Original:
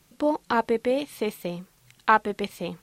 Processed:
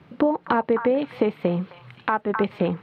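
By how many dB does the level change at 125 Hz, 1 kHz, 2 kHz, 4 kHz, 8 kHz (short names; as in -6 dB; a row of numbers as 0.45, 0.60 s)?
+9.5 dB, -0.5 dB, -2.0 dB, -3.5 dB, under -20 dB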